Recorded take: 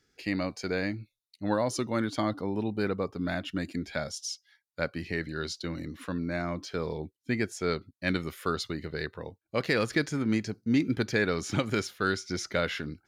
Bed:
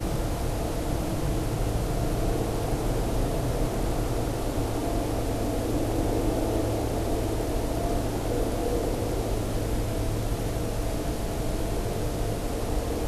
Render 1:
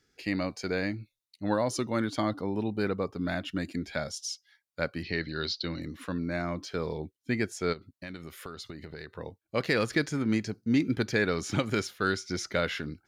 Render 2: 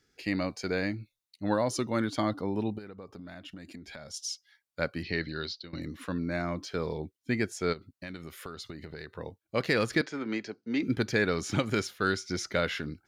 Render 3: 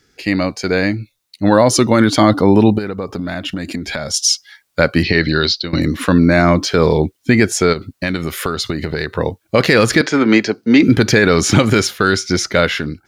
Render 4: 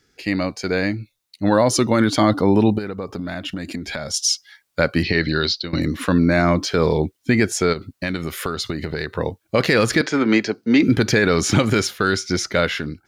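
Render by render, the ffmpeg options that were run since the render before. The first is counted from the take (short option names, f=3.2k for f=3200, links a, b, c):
-filter_complex "[0:a]asettb=1/sr,asplit=3[a][b][c];[a]atrim=end=5.034[d];[b]atrim=start=5.03:end=5.82,asetpts=PTS-STARTPTS,afade=t=in:d=0.004:c=qsin,afade=t=out:st=0.786:d=0.004:c=qsin,highshelf=f=6.3k:t=q:w=3:g=-13.5[e];[c]atrim=start=5.816[f];[d][e]acrossfade=d=0.004:c1=hsin:c2=qsin[g];[g][f]acrossfade=d=0.004:c1=qsin:c2=hsin,asplit=3[h][i][j];[h]afade=t=out:st=7.72:d=0.02[k];[i]acompressor=threshold=-38dB:ratio=5:attack=3.2:release=140:knee=1:detection=peak,afade=t=in:st=7.72:d=0.02,afade=t=out:st=9.13:d=0.02[l];[j]afade=t=in:st=9.13:d=0.02[m];[k][l][m]amix=inputs=3:normalize=0"
-filter_complex "[0:a]asplit=3[a][b][c];[a]afade=t=out:st=2.77:d=0.02[d];[b]acompressor=threshold=-41dB:ratio=8:attack=3.2:release=140:knee=1:detection=peak,afade=t=in:st=2.77:d=0.02,afade=t=out:st=4.13:d=0.02[e];[c]afade=t=in:st=4.13:d=0.02[f];[d][e][f]amix=inputs=3:normalize=0,asettb=1/sr,asplit=3[g][h][i];[g]atrim=end=10.014[j];[h]atrim=start=10.01:end=10.83,asetpts=PTS-STARTPTS,afade=t=in:d=0.004:c=qsin,afade=t=out:st=0.816:d=0.004:c=qsin,acrossover=split=270 5400:gain=0.1 1 0.0631[k][l][m];[k][l][m]amix=inputs=3:normalize=0[n];[i]atrim=start=10.826[o];[j][n]acrossfade=d=0.004:c1=hsin:c2=qsin[p];[p][o]acrossfade=d=0.004:c1=qsin:c2=hsin,asplit=2[q][r];[q]atrim=end=5.73,asetpts=PTS-STARTPTS,afade=t=out:st=5.27:d=0.46:silence=0.105925[s];[r]atrim=start=5.73,asetpts=PTS-STARTPTS,afade=t=in:d=0.004:c=hsin:silence=0.105925[t];[s][t]concat=n=2:v=0:a=1"
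-af "dynaudnorm=f=340:g=9:m=8.5dB,alimiter=level_in=13.5dB:limit=-1dB:release=50:level=0:latency=1"
-af "volume=-5dB"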